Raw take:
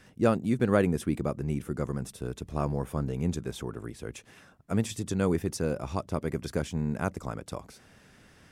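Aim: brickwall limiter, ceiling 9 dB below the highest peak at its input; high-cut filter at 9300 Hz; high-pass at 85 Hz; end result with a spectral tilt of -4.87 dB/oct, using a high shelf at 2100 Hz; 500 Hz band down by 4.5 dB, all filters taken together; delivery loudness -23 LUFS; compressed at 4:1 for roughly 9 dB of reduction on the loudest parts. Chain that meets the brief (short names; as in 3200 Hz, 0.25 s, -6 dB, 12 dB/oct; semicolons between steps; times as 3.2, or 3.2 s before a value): HPF 85 Hz; LPF 9300 Hz; bell 500 Hz -6 dB; high shelf 2100 Hz +5.5 dB; compressor 4:1, threshold -32 dBFS; gain +17.5 dB; limiter -10.5 dBFS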